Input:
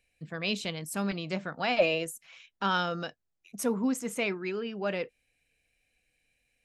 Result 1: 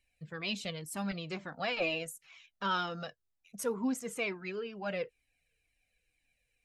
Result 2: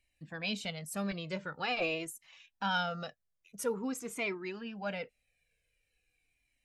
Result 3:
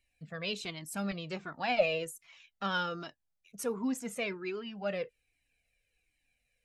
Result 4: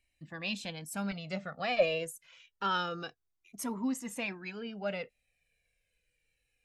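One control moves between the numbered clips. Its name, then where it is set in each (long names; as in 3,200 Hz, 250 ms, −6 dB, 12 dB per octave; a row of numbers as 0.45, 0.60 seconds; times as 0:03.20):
flanger whose copies keep moving one way, speed: 2.1, 0.46, 1.3, 0.27 Hertz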